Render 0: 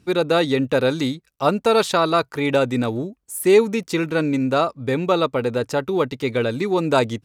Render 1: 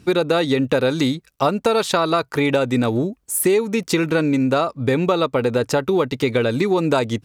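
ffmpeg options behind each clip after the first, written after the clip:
-af "acompressor=threshold=-23dB:ratio=6,volume=8dB"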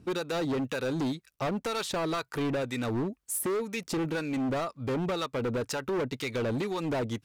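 -filter_complex "[0:a]acrossover=split=1100[a][b];[a]aeval=exprs='val(0)*(1-0.7/2+0.7/2*cos(2*PI*2*n/s))':c=same[c];[b]aeval=exprs='val(0)*(1-0.7/2-0.7/2*cos(2*PI*2*n/s))':c=same[d];[c][d]amix=inputs=2:normalize=0,asoftclip=type=hard:threshold=-21.5dB,volume=-5.5dB"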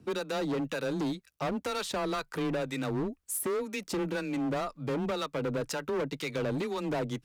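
-af "afreqshift=18,volume=-1.5dB"

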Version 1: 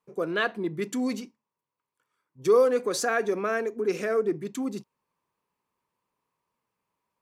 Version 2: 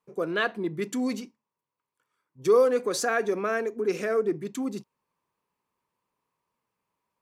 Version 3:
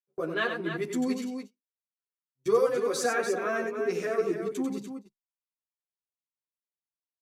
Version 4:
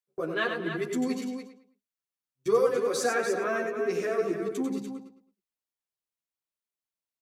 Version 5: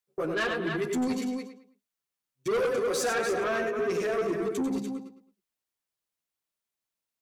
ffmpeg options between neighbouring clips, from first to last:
-af anull
-filter_complex "[0:a]aecho=1:1:93.29|291.5:0.447|0.398,agate=range=-30dB:threshold=-38dB:ratio=16:detection=peak,asplit=2[a][b];[b]adelay=10.5,afreqshift=0.34[c];[a][c]amix=inputs=2:normalize=1"
-filter_complex "[0:a]asplit=2[a][b];[b]adelay=108,lowpass=f=4.3k:p=1,volume=-10.5dB,asplit=2[c][d];[d]adelay=108,lowpass=f=4.3k:p=1,volume=0.31,asplit=2[e][f];[f]adelay=108,lowpass=f=4.3k:p=1,volume=0.31[g];[a][c][e][g]amix=inputs=4:normalize=0"
-af "asoftclip=type=tanh:threshold=-27.5dB,volume=4dB"

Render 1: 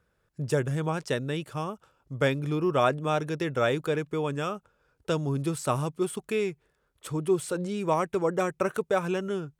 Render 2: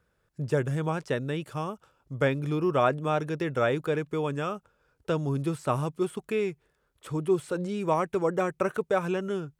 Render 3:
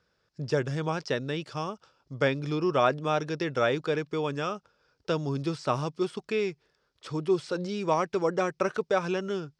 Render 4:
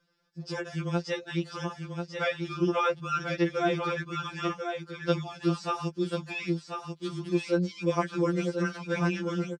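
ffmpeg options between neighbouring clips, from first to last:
-filter_complex "[0:a]acrossover=split=2900[a][b];[b]acompressor=threshold=-46dB:ratio=4:attack=1:release=60[c];[a][c]amix=inputs=2:normalize=0"
-af "lowpass=f=5.1k:t=q:w=4,lowshelf=f=83:g=-11"
-af "aecho=1:1:1040:0.501,afftfilt=real='re*2.83*eq(mod(b,8),0)':imag='im*2.83*eq(mod(b,8),0)':win_size=2048:overlap=0.75,volume=1.5dB"

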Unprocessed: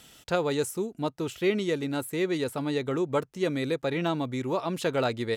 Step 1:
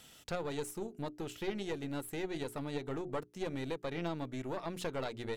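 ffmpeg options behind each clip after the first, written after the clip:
-af "acompressor=threshold=-35dB:ratio=2,bandreject=f=60:t=h:w=6,bandreject=f=120:t=h:w=6,bandreject=f=180:t=h:w=6,bandreject=f=240:t=h:w=6,bandreject=f=300:t=h:w=6,bandreject=f=360:t=h:w=6,bandreject=f=420:t=h:w=6,aeval=exprs='(tanh(22.4*val(0)+0.75)-tanh(0.75))/22.4':c=same"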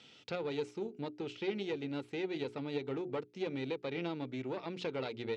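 -af "highpass=f=110:w=0.5412,highpass=f=110:w=1.3066,equalizer=f=160:t=q:w=4:g=-5,equalizer=f=430:t=q:w=4:g=3,equalizer=f=660:t=q:w=4:g=-6,equalizer=f=1.1k:t=q:w=4:g=-6,equalizer=f=1.7k:t=q:w=4:g=-6,equalizer=f=2.4k:t=q:w=4:g=4,lowpass=f=5k:w=0.5412,lowpass=f=5k:w=1.3066,volume=1dB"

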